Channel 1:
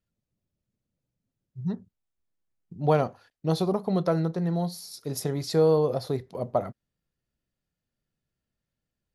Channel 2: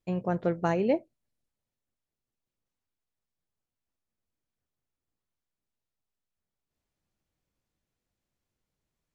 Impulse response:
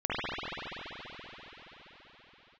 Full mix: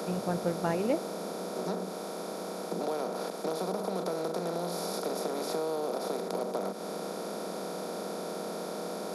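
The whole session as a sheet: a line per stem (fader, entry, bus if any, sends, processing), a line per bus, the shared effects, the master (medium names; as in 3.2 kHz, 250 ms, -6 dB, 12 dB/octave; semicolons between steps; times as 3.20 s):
-6.5 dB, 0.00 s, no send, spectral levelling over time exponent 0.2; steep high-pass 180 Hz 72 dB/octave; compression 4:1, threshold -24 dBFS, peak gain reduction 9.5 dB
-3.5 dB, 0.00 s, no send, none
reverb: none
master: band-stop 4.3 kHz, Q 21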